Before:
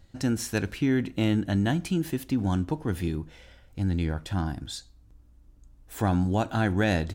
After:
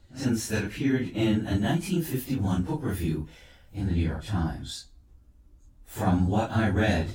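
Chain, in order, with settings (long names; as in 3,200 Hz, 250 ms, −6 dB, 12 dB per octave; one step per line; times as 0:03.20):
random phases in long frames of 100 ms
0:01.42–0:03.81: high-shelf EQ 11,000 Hz +9.5 dB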